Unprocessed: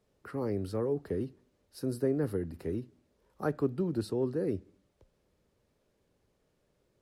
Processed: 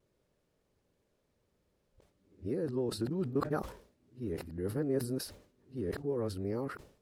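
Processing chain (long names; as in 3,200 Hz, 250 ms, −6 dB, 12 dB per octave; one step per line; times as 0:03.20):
played backwards from end to start
pitch vibrato 0.3 Hz 9.4 cents
level that may fall only so fast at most 110 dB per second
level −3 dB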